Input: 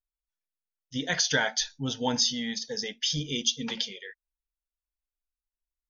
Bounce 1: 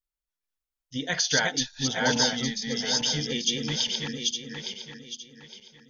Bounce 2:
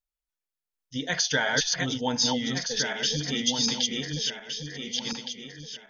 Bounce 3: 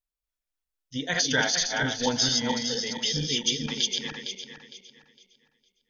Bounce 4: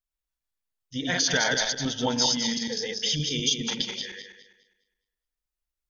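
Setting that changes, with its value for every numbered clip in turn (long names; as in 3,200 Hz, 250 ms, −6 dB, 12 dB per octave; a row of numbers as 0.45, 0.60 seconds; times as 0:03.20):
feedback delay that plays each chunk backwards, delay time: 431, 733, 229, 103 milliseconds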